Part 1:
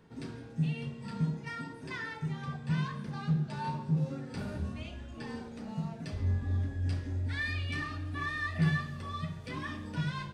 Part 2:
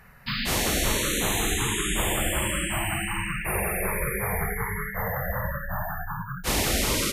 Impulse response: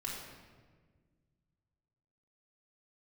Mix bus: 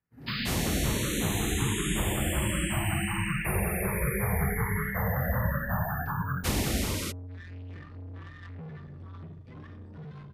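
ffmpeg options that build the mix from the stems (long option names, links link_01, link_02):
-filter_complex "[0:a]aemphasis=mode=reproduction:type=riaa,alimiter=limit=-19.5dB:level=0:latency=1:release=94,asoftclip=type=tanh:threshold=-33.5dB,volume=-3.5dB,asplit=3[link_01][link_02][link_03];[link_01]atrim=end=2.21,asetpts=PTS-STARTPTS,afade=type=out:start_time=2.206:duration=0.004:curve=hsin[link_04];[link_02]atrim=start=2.21:end=4.42,asetpts=PTS-STARTPTS,volume=0[link_05];[link_03]atrim=start=4.42,asetpts=PTS-STARTPTS,afade=type=in:duration=0.004:curve=hsin[link_06];[link_04][link_05][link_06]concat=n=3:v=0:a=1[link_07];[1:a]dynaudnorm=framelen=110:gausssize=7:maxgain=11.5dB,volume=-7dB,asplit=2[link_08][link_09];[link_09]volume=-22.5dB[link_10];[2:a]atrim=start_sample=2205[link_11];[link_10][link_11]afir=irnorm=-1:irlink=0[link_12];[link_07][link_08][link_12]amix=inputs=3:normalize=0,highpass=59,agate=range=-33dB:threshold=-35dB:ratio=3:detection=peak,acrossover=split=290[link_13][link_14];[link_14]acompressor=threshold=-31dB:ratio=6[link_15];[link_13][link_15]amix=inputs=2:normalize=0"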